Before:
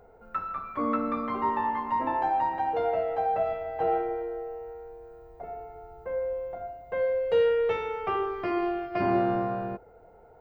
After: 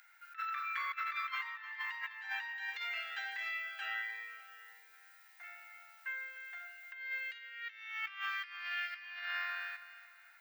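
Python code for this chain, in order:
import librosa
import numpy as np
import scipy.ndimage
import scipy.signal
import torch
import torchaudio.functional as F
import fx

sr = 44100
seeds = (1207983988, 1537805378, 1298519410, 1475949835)

y = scipy.signal.sosfilt(scipy.signal.cheby1(4, 1.0, 1700.0, 'highpass', fs=sr, output='sos'), x)
y = fx.over_compress(y, sr, threshold_db=-50.0, ratio=-0.5)
y = fx.echo_feedback(y, sr, ms=305, feedback_pct=41, wet_db=-14)
y = fx.notch_cascade(y, sr, direction='rising', hz=1.4, at=(2.56, 4.92), fade=0.02)
y = y * 10.0 ** (10.0 / 20.0)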